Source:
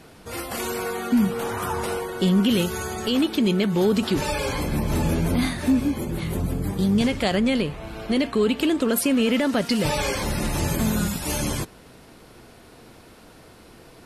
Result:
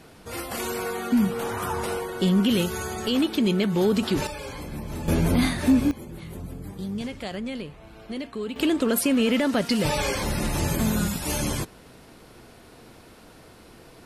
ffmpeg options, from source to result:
ffmpeg -i in.wav -af "asetnsamples=nb_out_samples=441:pad=0,asendcmd='4.27 volume volume -10dB;5.08 volume volume 1dB;5.91 volume volume -11dB;8.56 volume volume -1dB',volume=-1.5dB" out.wav

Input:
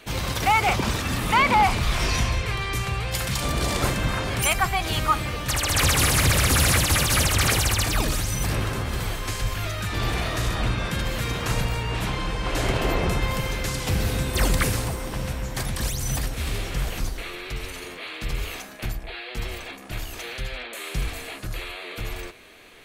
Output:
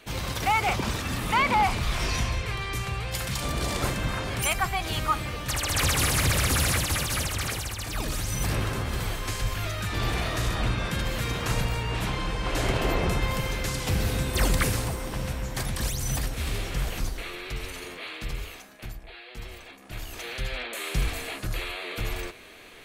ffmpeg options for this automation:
ffmpeg -i in.wav -af "volume=16dB,afade=type=out:start_time=6.45:duration=1.33:silence=0.398107,afade=type=in:start_time=7.78:duration=0.66:silence=0.316228,afade=type=out:start_time=18.08:duration=0.48:silence=0.446684,afade=type=in:start_time=19.77:duration=0.82:silence=0.316228" out.wav

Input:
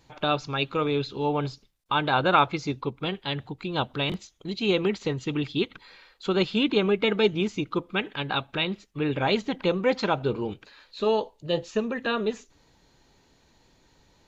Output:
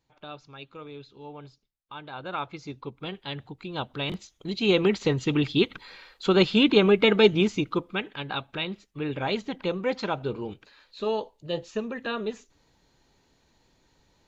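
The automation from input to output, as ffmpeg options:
ffmpeg -i in.wav -af "volume=4dB,afade=type=in:start_time=2.13:duration=1.1:silence=0.266073,afade=type=in:start_time=3.88:duration=1.21:silence=0.354813,afade=type=out:start_time=7.41:duration=0.65:silence=0.398107" out.wav

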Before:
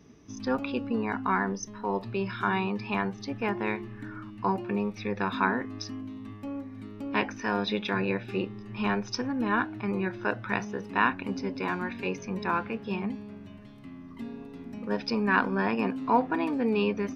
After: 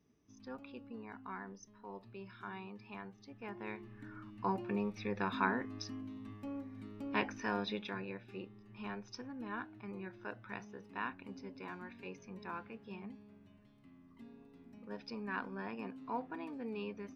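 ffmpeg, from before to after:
ffmpeg -i in.wav -af "volume=-7dB,afade=type=in:start_time=3.35:duration=1.29:silence=0.251189,afade=type=out:start_time=7.43:duration=0.63:silence=0.354813" out.wav

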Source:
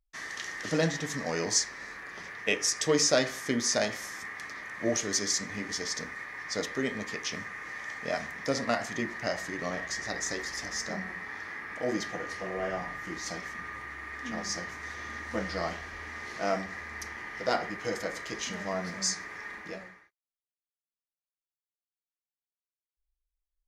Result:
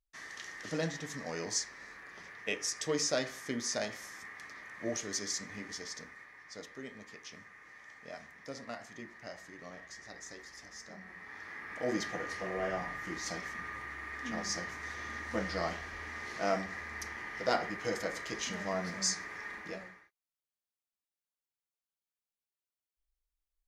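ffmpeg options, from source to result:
ffmpeg -i in.wav -af "volume=5dB,afade=type=out:start_time=5.58:duration=0.83:silence=0.446684,afade=type=in:start_time=10.98:duration=1.02:silence=0.237137" out.wav

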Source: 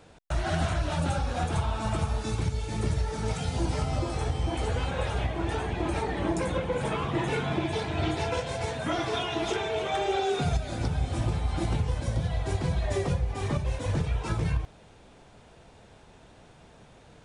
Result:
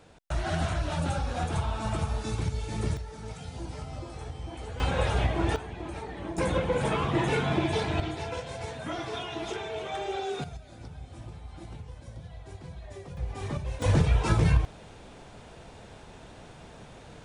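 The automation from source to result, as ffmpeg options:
ffmpeg -i in.wav -af "asetnsamples=nb_out_samples=441:pad=0,asendcmd='2.97 volume volume -10dB;4.8 volume volume 3dB;5.56 volume volume -8.5dB;6.38 volume volume 2dB;8 volume volume -5.5dB;10.44 volume volume -15dB;13.17 volume volume -4.5dB;13.82 volume volume 5.5dB',volume=-1.5dB" out.wav

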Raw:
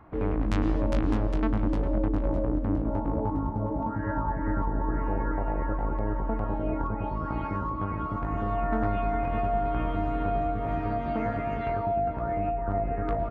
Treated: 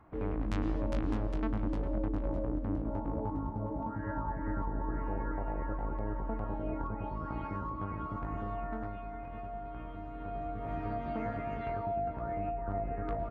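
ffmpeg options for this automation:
ffmpeg -i in.wav -af "volume=1dB,afade=type=out:start_time=8.25:duration=0.75:silence=0.398107,afade=type=in:start_time=10.13:duration=0.72:silence=0.398107" out.wav

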